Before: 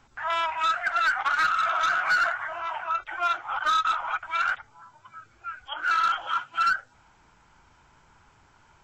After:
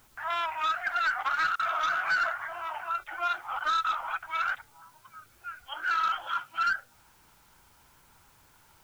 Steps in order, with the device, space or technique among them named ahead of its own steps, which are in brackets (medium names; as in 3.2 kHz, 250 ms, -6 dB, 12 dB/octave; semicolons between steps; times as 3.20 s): worn cassette (low-pass 6.9 kHz; wow and flutter; level dips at 1.56 s, 32 ms -27 dB; white noise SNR 32 dB); trim -4 dB